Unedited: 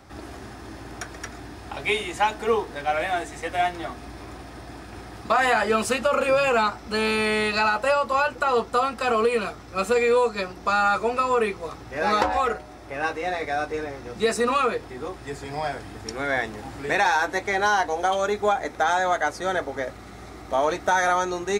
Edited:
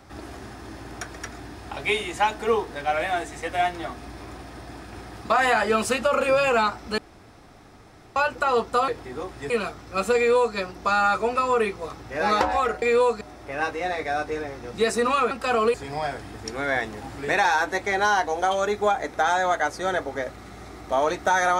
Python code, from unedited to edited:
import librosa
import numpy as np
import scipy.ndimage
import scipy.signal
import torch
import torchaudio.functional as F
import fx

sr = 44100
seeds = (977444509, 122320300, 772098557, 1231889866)

y = fx.edit(x, sr, fx.room_tone_fill(start_s=6.98, length_s=1.18),
    fx.swap(start_s=8.88, length_s=0.43, other_s=14.73, other_length_s=0.62),
    fx.duplicate(start_s=9.98, length_s=0.39, to_s=12.63), tone=tone)